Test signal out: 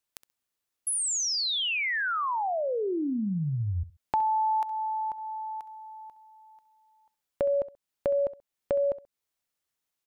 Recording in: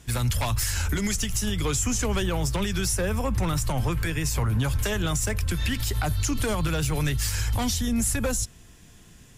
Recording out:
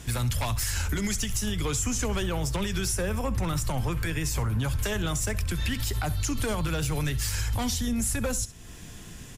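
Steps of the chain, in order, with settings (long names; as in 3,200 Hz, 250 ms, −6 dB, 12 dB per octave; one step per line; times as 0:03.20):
downward compressor 2 to 1, threshold −41 dBFS
on a send: repeating echo 66 ms, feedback 25%, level −17 dB
on the sum: level +7.5 dB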